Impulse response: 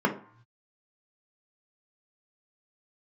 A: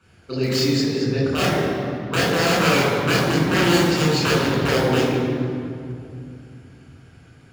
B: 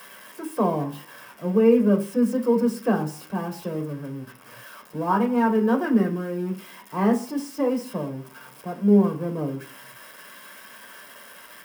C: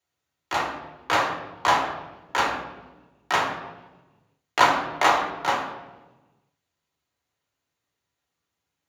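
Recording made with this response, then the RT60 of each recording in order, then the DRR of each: B; 2.6 s, no single decay rate, 1.2 s; -6.0 dB, 2.5 dB, -1.0 dB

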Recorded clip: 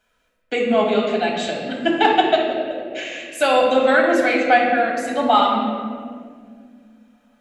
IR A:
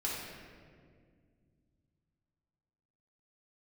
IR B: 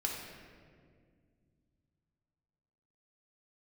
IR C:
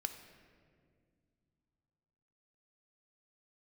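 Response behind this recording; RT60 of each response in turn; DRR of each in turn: B; 2.0 s, 2.0 s, 2.1 s; -6.0 dB, -1.5 dB, 7.0 dB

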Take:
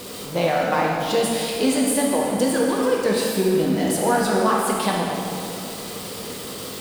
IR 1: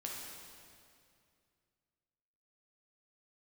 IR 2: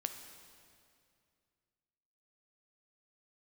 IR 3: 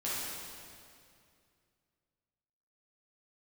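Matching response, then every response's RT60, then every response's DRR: 1; 2.4 s, 2.4 s, 2.4 s; -3.0 dB, 6.5 dB, -9.5 dB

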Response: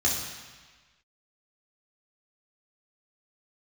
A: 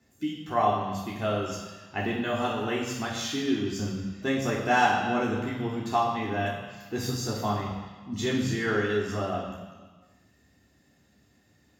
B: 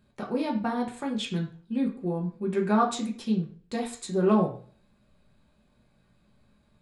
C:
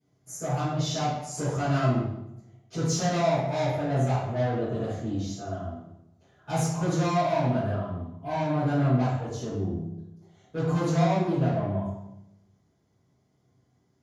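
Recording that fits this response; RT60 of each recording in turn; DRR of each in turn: A; 1.4 s, 0.40 s, 0.85 s; -4.0 dB, -2.0 dB, -15.5 dB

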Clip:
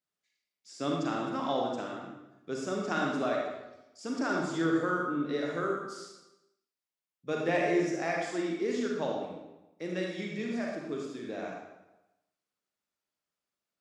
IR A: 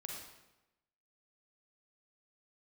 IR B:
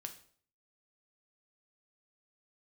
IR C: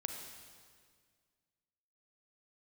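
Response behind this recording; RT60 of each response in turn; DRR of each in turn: A; 1.0 s, 0.50 s, 1.9 s; -1.0 dB, 5.0 dB, 3.5 dB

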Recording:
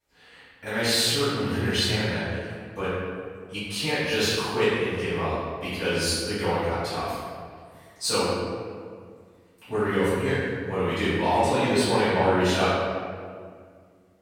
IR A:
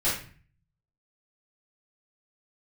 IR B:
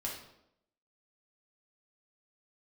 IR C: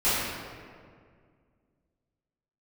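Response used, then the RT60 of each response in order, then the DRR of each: C; 0.45 s, 0.80 s, 2.0 s; -11.5 dB, -3.5 dB, -15.5 dB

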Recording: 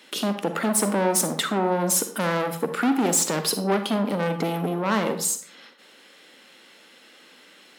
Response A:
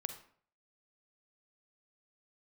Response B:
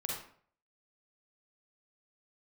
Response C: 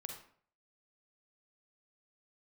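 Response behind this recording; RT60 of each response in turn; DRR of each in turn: A; 0.55 s, 0.55 s, 0.55 s; 8.0 dB, -2.5 dB, 2.5 dB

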